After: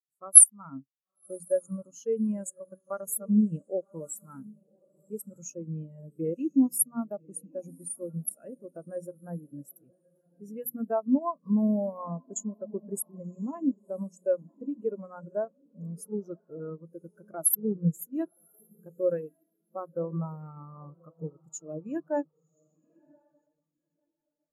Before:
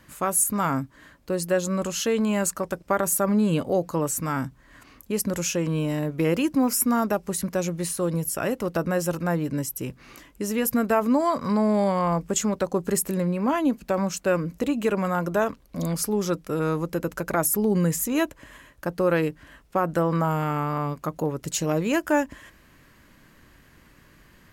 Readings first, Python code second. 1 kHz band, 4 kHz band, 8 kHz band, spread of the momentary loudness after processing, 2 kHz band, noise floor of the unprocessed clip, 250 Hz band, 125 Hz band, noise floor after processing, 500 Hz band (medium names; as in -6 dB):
-15.0 dB, under -30 dB, +2.5 dB, 18 LU, under -20 dB, -55 dBFS, -6.5 dB, -10.0 dB, -82 dBFS, -8.5 dB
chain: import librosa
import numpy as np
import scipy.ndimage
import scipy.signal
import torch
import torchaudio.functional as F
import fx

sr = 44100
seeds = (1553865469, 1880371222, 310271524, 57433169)

y = fx.high_shelf(x, sr, hz=5500.0, db=11.5)
y = fx.hum_notches(y, sr, base_hz=60, count=5)
y = fx.transient(y, sr, attack_db=0, sustain_db=-8)
y = fx.echo_diffused(y, sr, ms=1084, feedback_pct=46, wet_db=-10)
y = fx.spectral_expand(y, sr, expansion=2.5)
y = F.gain(torch.from_numpy(y), -1.0).numpy()